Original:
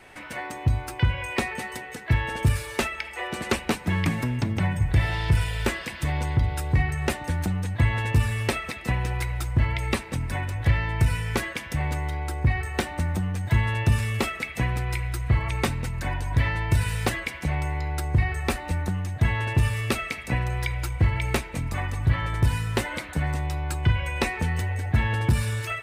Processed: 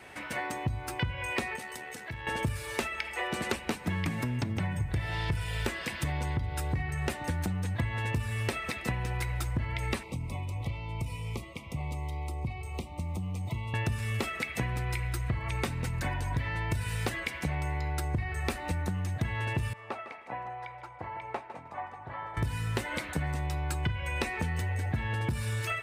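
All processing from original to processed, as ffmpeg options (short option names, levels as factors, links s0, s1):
-filter_complex "[0:a]asettb=1/sr,asplit=3[s0][s1][s2];[s0]atrim=end=1.564[s3];[s1]atrim=start=1.56:end=2.27,asetpts=PTS-STARTPTS,afade=t=in:d=0.004:c=qsin,afade=t=out:st=0.706:d=0.004:c=qsin,bass=f=250:g=-3,treble=f=4000:g=4,acompressor=threshold=0.0158:ratio=4:attack=3.2:release=140:knee=1:detection=peak,tremolo=f=76:d=0.4[s4];[s2]atrim=start=2.266[s5];[s3][s4]acrossfade=d=0.004:c1=hsin:c2=qsin[s6];[s6][s5]acrossfade=d=0.004:c1=qsin:c2=hsin,asettb=1/sr,asplit=3[s7][s8][s9];[s7]atrim=end=10.034[s10];[s8]atrim=start=10.03:end=13.74,asetpts=PTS-STARTPTS,afade=t=in:d=0.004:c=qsin,afade=t=out:st=3.706:d=0.004:c=qsin,acrossover=split=180|2500[s11][s12][s13];[s11]acompressor=threshold=0.0224:ratio=4[s14];[s12]acompressor=threshold=0.00794:ratio=4[s15];[s13]acompressor=threshold=0.00251:ratio=4[s16];[s14][s15][s16]amix=inputs=3:normalize=0,asuperstop=centerf=1600:order=8:qfactor=1.9[s17];[s9]atrim=start=13.736[s18];[s10][s17]acrossfade=d=0.004:c1=hsin:c2=qsin[s19];[s19][s18]acrossfade=d=0.004:c1=qsin:c2=hsin,asettb=1/sr,asplit=3[s20][s21][s22];[s20]atrim=end=19.734[s23];[s21]atrim=start=19.73:end=22.37,asetpts=PTS-STARTPTS,afade=t=in:d=0.004:c=qsin,afade=t=out:st=2.636:d=0.004:c=qsin,bandpass=f=830:t=q:w=2.5,aecho=1:1:155|310|465:0.224|0.0515|0.0118,atrim=end_sample=116424[s24];[s22]atrim=start=22.366[s25];[s23][s24]acrossfade=d=0.004:c1=hsin:c2=qsin[s26];[s26][s25]acrossfade=d=0.004:c1=qsin:c2=hsin,highpass=55,acompressor=threshold=0.0398:ratio=6"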